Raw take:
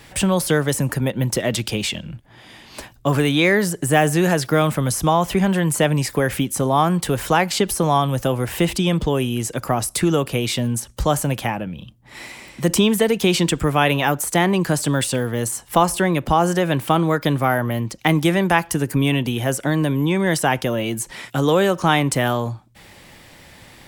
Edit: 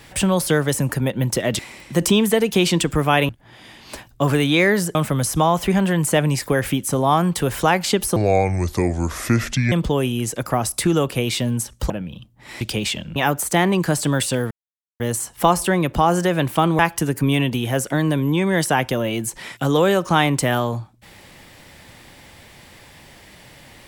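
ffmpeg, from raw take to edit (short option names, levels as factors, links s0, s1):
-filter_complex "[0:a]asplit=11[s0][s1][s2][s3][s4][s5][s6][s7][s8][s9][s10];[s0]atrim=end=1.592[s11];[s1]atrim=start=12.268:end=13.972[s12];[s2]atrim=start=2.138:end=3.802[s13];[s3]atrim=start=4.618:end=7.834[s14];[s4]atrim=start=7.83:end=8.89,asetpts=PTS-STARTPTS,asetrate=29988,aresample=44100,atrim=end_sample=68744,asetpts=PTS-STARTPTS[s15];[s5]atrim=start=8.886:end=11.072[s16];[s6]atrim=start=11.558:end=12.272[s17];[s7]atrim=start=1.588:end=2.142[s18];[s8]atrim=start=13.968:end=15.32,asetpts=PTS-STARTPTS,afade=t=out:st=1.348:d=0.004:c=hsin,apad=pad_dur=0.49[s19];[s9]atrim=start=15.32:end=17.112,asetpts=PTS-STARTPTS,afade=t=in:d=0.004:c=hsin[s20];[s10]atrim=start=18.518[s21];[s11][s12]acrossfade=d=0.004:c1=hsin:c2=hsin[s22];[s22][s13]acrossfade=d=0.004:c1=hsin:c2=hsin[s23];[s23][s14]acrossfade=d=0.004:c1=hsin:c2=hsin[s24];[s24][s15]acrossfade=d=0.004:c1=hsin:c2=hsin[s25];[s25][s16]acrossfade=d=0.004:c1=hsin:c2=hsin[s26];[s26][s17]acrossfade=d=0.004:c1=hsin:c2=hsin[s27];[s27][s18]acrossfade=d=0.004:c1=hsin:c2=hsin[s28];[s19][s20]concat=n=2:v=0:a=1[s29];[s28][s29]acrossfade=d=0.004:c1=hsin:c2=hsin[s30];[s30][s21]acrossfade=d=0.004:c1=hsin:c2=hsin"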